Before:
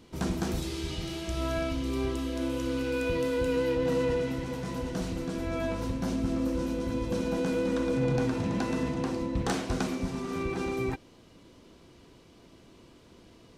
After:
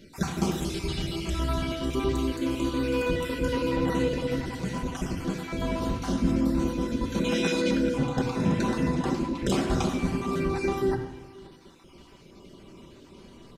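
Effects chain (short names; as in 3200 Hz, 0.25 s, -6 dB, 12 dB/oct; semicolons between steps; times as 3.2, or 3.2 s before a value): random spectral dropouts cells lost 34%; 7.24–7.71 weighting filter D; outdoor echo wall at 91 m, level -22 dB; reverb RT60 0.90 s, pre-delay 5 ms, DRR 1 dB; gain +3 dB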